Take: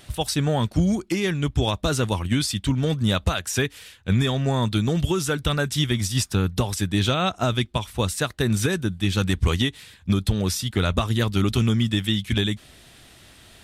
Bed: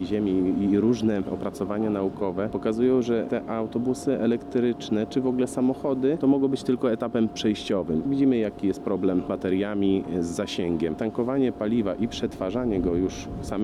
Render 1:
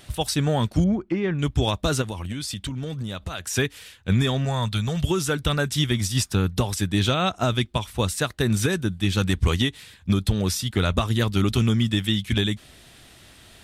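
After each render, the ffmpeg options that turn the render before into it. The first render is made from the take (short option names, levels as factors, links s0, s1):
-filter_complex "[0:a]asettb=1/sr,asplit=3[s0][s1][s2];[s0]atrim=end=0.844[s3];[s1]atrim=start=0.84:end=1.39,asetpts=PTS-STARTPTS,afade=t=in:d=0.004:c=qsin,afade=t=out:st=0.546:d=0.004:c=qsin,lowpass=1700[s4];[s2]atrim=start=1.386[s5];[s3][s4]acrossfade=d=0.004:c1=hsin:c2=qsin[s6];[s6][s5]acrossfade=d=0.004:c1=qsin:c2=hsin,asplit=3[s7][s8][s9];[s7]afade=t=out:st=2.01:d=0.02[s10];[s8]acompressor=threshold=0.0501:ratio=12:attack=3.2:release=140:knee=1:detection=peak,afade=t=in:st=2.01:d=0.02,afade=t=out:st=3.5:d=0.02[s11];[s9]afade=t=in:st=3.5:d=0.02[s12];[s10][s11][s12]amix=inputs=3:normalize=0,asettb=1/sr,asplit=3[s13][s14][s15];[s13]atrim=end=4.454[s16];[s14]atrim=start=4.45:end=5.04,asetpts=PTS-STARTPTS,afade=t=in:d=0.004:c=qsin,afade=t=out:st=0.586:d=0.004:c=qsin,equalizer=f=310:t=o:w=0.83:g=-14.5[s17];[s15]atrim=start=5.036[s18];[s16][s17]acrossfade=d=0.004:c1=hsin:c2=qsin[s19];[s19][s18]acrossfade=d=0.004:c1=qsin:c2=hsin"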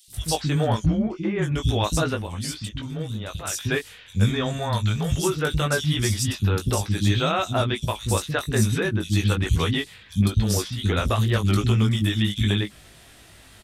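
-filter_complex "[0:a]asplit=2[s0][s1];[s1]adelay=19,volume=0.562[s2];[s0][s2]amix=inputs=2:normalize=0,acrossover=split=260|3800[s3][s4][s5];[s3]adelay=80[s6];[s4]adelay=130[s7];[s6][s7][s5]amix=inputs=3:normalize=0"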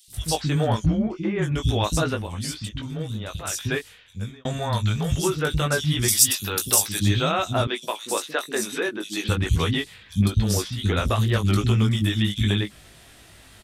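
-filter_complex "[0:a]asettb=1/sr,asplit=3[s0][s1][s2];[s0]atrim=end=6.084[s3];[s1]atrim=start=6.08:end=7,asetpts=PTS-STARTPTS,afade=t=in:d=0.004:c=qsin,afade=t=out:st=0.916:d=0.004:c=qsin,aemphasis=mode=production:type=riaa[s4];[s2]atrim=start=6.996[s5];[s3][s4]acrossfade=d=0.004:c1=hsin:c2=qsin[s6];[s6][s5]acrossfade=d=0.004:c1=qsin:c2=hsin,asettb=1/sr,asplit=3[s7][s8][s9];[s7]atrim=end=7.674[s10];[s8]atrim=start=7.67:end=9.29,asetpts=PTS-STARTPTS,afade=t=in:d=0.004:c=qsin,afade=t=out:st=1.616:d=0.004:c=qsin,highpass=f=290:w=0.5412,highpass=f=290:w=1.3066[s11];[s9]atrim=start=9.286[s12];[s10][s11]acrossfade=d=0.004:c1=hsin:c2=qsin[s13];[s13][s12]acrossfade=d=0.004:c1=qsin:c2=hsin,asplit=2[s14][s15];[s14]atrim=end=4.45,asetpts=PTS-STARTPTS,afade=t=out:st=3.6:d=0.85[s16];[s15]atrim=start=4.45,asetpts=PTS-STARTPTS,afade=t=in:d=0.004:c=hsin[s17];[s16][s17]concat=n=2:v=0:a=1"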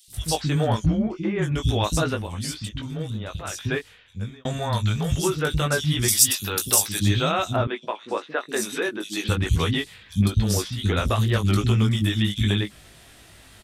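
-filter_complex "[0:a]asettb=1/sr,asplit=3[s0][s1][s2];[s0]atrim=end=3.104[s3];[s1]atrim=start=3.1:end=4.32,asetpts=PTS-STARTPTS,afade=t=in:d=0.004:c=qsin,afade=t=out:st=1.216:d=0.004:c=qsin,aemphasis=mode=reproduction:type=cd[s4];[s2]atrim=start=4.316[s5];[s3][s4]acrossfade=d=0.004:c1=hsin:c2=qsin[s6];[s6][s5]acrossfade=d=0.004:c1=qsin:c2=hsin,asettb=1/sr,asplit=3[s7][s8][s9];[s7]atrim=end=7.564[s10];[s8]atrim=start=7.56:end=8.49,asetpts=PTS-STARTPTS,afade=t=in:d=0.004:c=qsin,afade=t=out:st=0.926:d=0.004:c=qsin,lowpass=2200[s11];[s9]atrim=start=8.486[s12];[s10][s11]acrossfade=d=0.004:c1=hsin:c2=qsin[s13];[s13][s12]acrossfade=d=0.004:c1=qsin:c2=hsin"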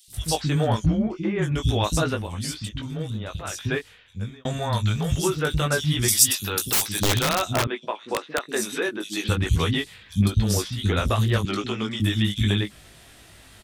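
-filter_complex "[0:a]asettb=1/sr,asplit=3[s0][s1][s2];[s0]atrim=end=4.924[s3];[s1]atrim=start=4.92:end=6.01,asetpts=PTS-STARTPTS,afade=t=in:d=0.004:c=qsin,afade=t=out:st=1.086:d=0.004:c=qsin,aeval=exprs='sgn(val(0))*max(abs(val(0))-0.00178,0)':c=same[s4];[s2]atrim=start=6.006[s5];[s3][s4]acrossfade=d=0.004:c1=hsin:c2=qsin[s6];[s6][s5]acrossfade=d=0.004:c1=qsin:c2=hsin,asettb=1/sr,asplit=3[s7][s8][s9];[s7]atrim=end=6.684[s10];[s8]atrim=start=6.68:end=8.42,asetpts=PTS-STARTPTS,afade=t=in:d=0.004:c=qsin,afade=t=out:st=1.736:d=0.004:c=qsin,aeval=exprs='(mod(5.31*val(0)+1,2)-1)/5.31':c=same[s11];[s9]atrim=start=8.416[s12];[s10][s11]acrossfade=d=0.004:c1=hsin:c2=qsin[s13];[s13][s12]acrossfade=d=0.004:c1=qsin:c2=hsin,asettb=1/sr,asplit=3[s14][s15][s16];[s14]atrim=end=11.454[s17];[s15]atrim=start=11.45:end=12,asetpts=PTS-STARTPTS,afade=t=in:d=0.004:c=qsin,afade=t=out:st=0.546:d=0.004:c=qsin,acrossover=split=220 6900:gain=0.0794 1 0.126[s18][s19][s20];[s18][s19][s20]amix=inputs=3:normalize=0[s21];[s16]atrim=start=11.996[s22];[s17][s21]acrossfade=d=0.004:c1=hsin:c2=qsin[s23];[s23][s22]acrossfade=d=0.004:c1=qsin:c2=hsin"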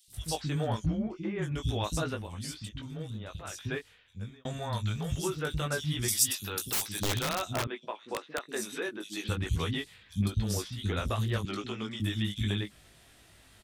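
-af "volume=0.355"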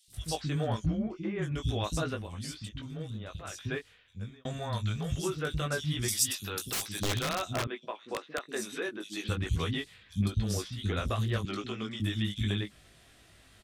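-af "highshelf=f=12000:g=-8.5,bandreject=f=890:w=12"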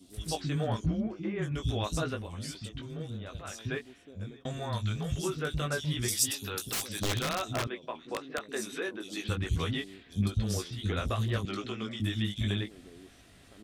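-filter_complex "[1:a]volume=0.0398[s0];[0:a][s0]amix=inputs=2:normalize=0"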